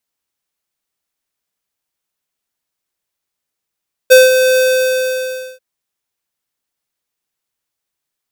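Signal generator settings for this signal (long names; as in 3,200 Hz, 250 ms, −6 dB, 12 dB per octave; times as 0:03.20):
note with an ADSR envelope square 514 Hz, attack 20 ms, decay 185 ms, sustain −8 dB, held 0.46 s, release 1,030 ms −3 dBFS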